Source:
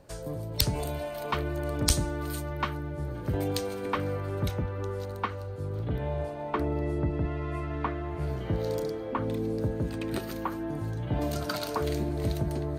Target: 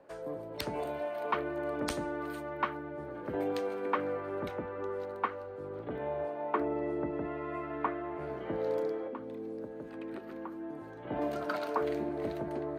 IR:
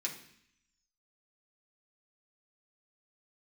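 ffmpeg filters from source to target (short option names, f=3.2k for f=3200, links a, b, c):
-filter_complex "[0:a]asettb=1/sr,asplit=3[a][b][c];[a]atrim=end=9.074[d];[b]atrim=start=9.07:end=11.05,asetpts=PTS-STARTPTS,afade=t=in:d=0.004:c=qsin,afade=t=out:st=1.976:d=0.004:c=qsin,acrossover=split=400|3900[e][f][g];[e]acompressor=threshold=-37dB:ratio=4[h];[f]acompressor=threshold=-46dB:ratio=4[i];[g]acompressor=threshold=-58dB:ratio=4[j];[h][i][j]amix=inputs=3:normalize=0[k];[c]atrim=start=11.046[l];[d][k]acrossfade=d=0.004:c1=hsin:c2=qsin[m];[m][l]acrossfade=d=0.004:c1=qsin:c2=hsin,acrossover=split=240 2500:gain=0.0794 1 0.126[n][o][p];[n][o][p]amix=inputs=3:normalize=0"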